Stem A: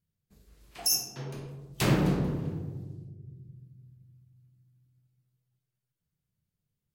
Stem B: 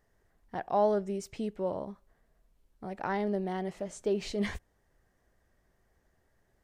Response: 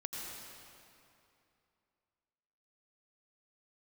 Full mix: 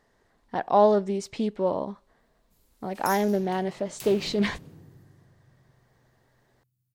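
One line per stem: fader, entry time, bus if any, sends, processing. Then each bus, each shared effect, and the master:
+0.5 dB, 2.20 s, no send, echo send -18.5 dB, pre-emphasis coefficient 0.8; compressor 2:1, threshold -43 dBFS, peak gain reduction 12 dB
-2.5 dB, 0.00 s, no send, no echo send, graphic EQ 125/250/500/1000/2000/4000/8000 Hz +4/+9/+6/+10/+5/+12/+5 dB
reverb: off
echo: echo 0.226 s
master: Doppler distortion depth 0.21 ms

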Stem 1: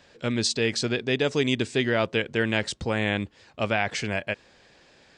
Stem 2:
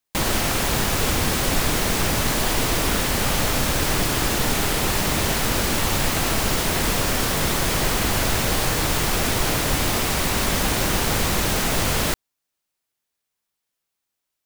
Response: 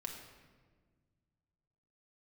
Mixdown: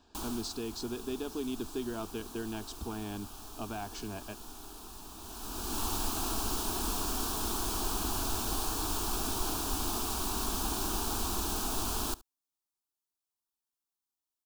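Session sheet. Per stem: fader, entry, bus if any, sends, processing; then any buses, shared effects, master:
-4.0 dB, 0.00 s, no send, no echo send, tilt -1.5 dB/oct; compressor 2:1, threshold -31 dBFS, peak gain reduction 8 dB
-9.5 dB, 0.00 s, no send, echo send -21.5 dB, auto duck -15 dB, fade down 0.55 s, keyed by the first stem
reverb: off
echo: echo 72 ms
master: fixed phaser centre 540 Hz, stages 6

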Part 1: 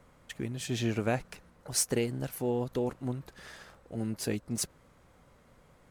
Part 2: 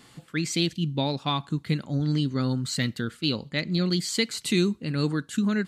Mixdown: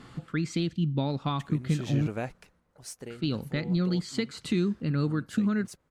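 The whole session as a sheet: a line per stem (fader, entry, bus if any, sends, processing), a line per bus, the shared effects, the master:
2.3 s -4 dB -> 2.64 s -12 dB, 1.10 s, no send, high shelf 9900 Hz +4.5 dB
+2.0 dB, 0.00 s, muted 2.07–3.1, no send, bell 1300 Hz +6.5 dB 0.42 oct; compressor 2:1, threshold -36 dBFS, peak gain reduction 10 dB; tilt -2 dB/oct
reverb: off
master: high shelf 10000 Hz -10.5 dB

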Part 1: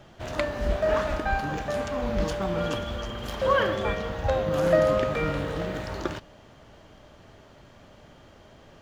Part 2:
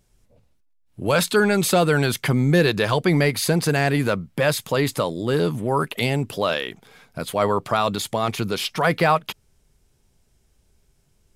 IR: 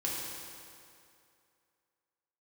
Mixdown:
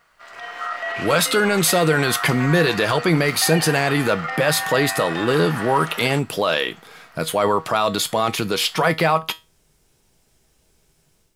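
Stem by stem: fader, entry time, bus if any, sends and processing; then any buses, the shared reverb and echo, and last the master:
-5.5 dB, 0.00 s, no send, limiter -19.5 dBFS, peak gain reduction 11 dB; ring modulator 1300 Hz; HPF 490 Hz 6 dB/oct
+2.0 dB, 0.00 s, no send, limiter -13.5 dBFS, peak gain reduction 6.5 dB; resonator 160 Hz, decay 0.24 s, harmonics all, mix 60%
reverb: off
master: low shelf 160 Hz -9.5 dB; AGC gain up to 10 dB; requantised 12-bit, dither none

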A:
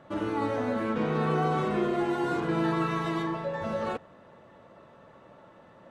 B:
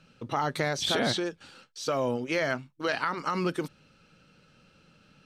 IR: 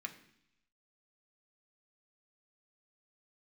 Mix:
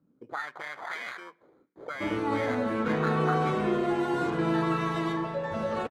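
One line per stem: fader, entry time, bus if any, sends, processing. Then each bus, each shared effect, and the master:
+0.5 dB, 1.90 s, no send, dry
-1.0 dB, 0.00 s, send -11 dB, sample-rate reducer 2700 Hz, jitter 0%; auto-wah 260–2100 Hz, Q 2.7, up, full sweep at -23.5 dBFS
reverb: on, RT60 0.70 s, pre-delay 3 ms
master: dry

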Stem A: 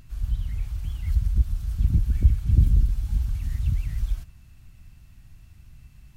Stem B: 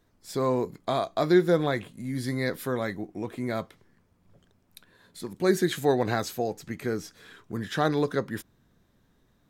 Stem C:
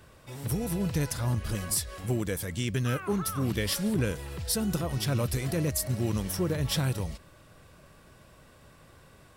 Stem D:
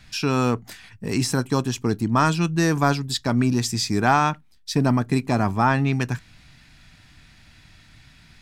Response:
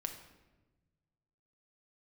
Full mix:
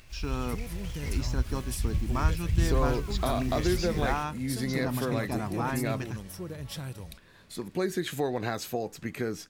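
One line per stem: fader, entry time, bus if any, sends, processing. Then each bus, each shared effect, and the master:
-8.0 dB, 0.00 s, no send, resonant high shelf 1600 Hz +10.5 dB, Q 3; noise-modulated delay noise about 2600 Hz, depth 0.039 ms
+0.5 dB, 2.35 s, no send, bell 2600 Hz +4.5 dB 0.4 oct; compressor 3:1, threshold -28 dBFS, peak gain reduction 10 dB
-10.0 dB, 0.00 s, no send, dry
-13.0 dB, 0.00 s, no send, steep low-pass 7200 Hz 96 dB/oct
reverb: off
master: dry

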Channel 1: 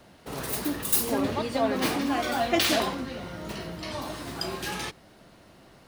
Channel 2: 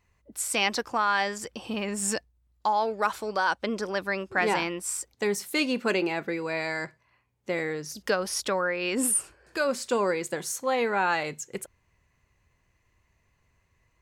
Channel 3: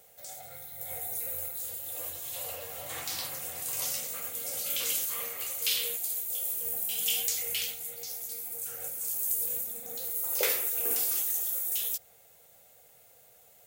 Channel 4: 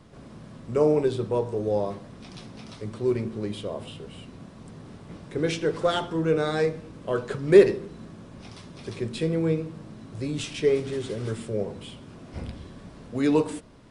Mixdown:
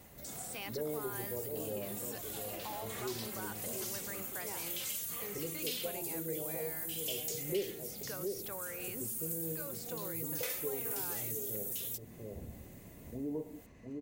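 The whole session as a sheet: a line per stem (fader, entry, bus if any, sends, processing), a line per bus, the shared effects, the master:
-11.0 dB, 0.00 s, no send, no echo send, auto duck -11 dB, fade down 0.55 s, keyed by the second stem
-17.5 dB, 0.00 s, no send, no echo send, HPF 48 Hz; fast leveller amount 50%
+1.0 dB, 0.00 s, no send, no echo send, endless flanger 3.5 ms +1.9 Hz
-10.0 dB, 0.00 s, no send, echo send -7.5 dB, steep low-pass 780 Hz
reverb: off
echo: echo 0.706 s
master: compressor 2:1, threshold -41 dBFS, peak gain reduction 12.5 dB

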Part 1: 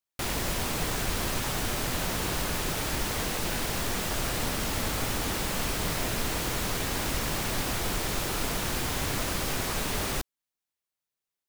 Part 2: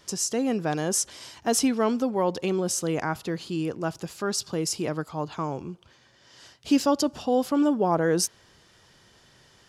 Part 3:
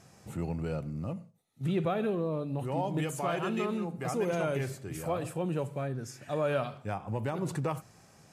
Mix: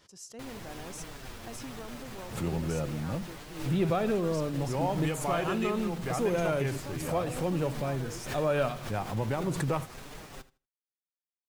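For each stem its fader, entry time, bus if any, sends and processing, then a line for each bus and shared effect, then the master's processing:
-5.5 dB, 0.20 s, bus A, no send, echo send -22 dB, high shelf 4700 Hz -6.5 dB; flange 1.2 Hz, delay 6.1 ms, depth 3 ms, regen +21%
-11.5 dB, 0.00 s, bus A, no send, no echo send, compressor, threshold -24 dBFS, peak gain reduction 8 dB
+2.0 dB, 2.05 s, no bus, no send, no echo send, dry
bus A: 0.0 dB, expander -33 dBFS; limiter -32 dBFS, peak gain reduction 7.5 dB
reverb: off
echo: feedback echo 79 ms, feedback 19%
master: backwards sustainer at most 91 dB/s

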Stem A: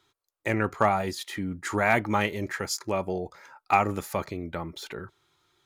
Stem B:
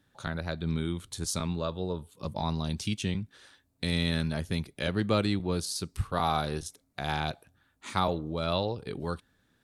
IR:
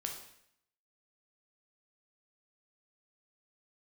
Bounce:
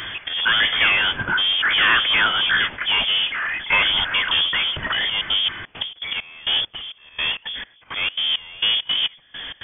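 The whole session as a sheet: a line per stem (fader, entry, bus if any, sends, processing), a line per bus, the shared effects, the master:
-6.5 dB, 0.00 s, no send, bell 1800 Hz +14 dB 0.61 oct
-1.0 dB, 0.00 s, no send, auto swell 0.451 s; step gate "xx.xx..." 167 bpm -60 dB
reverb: off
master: power-law curve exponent 0.35; inverted band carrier 3400 Hz

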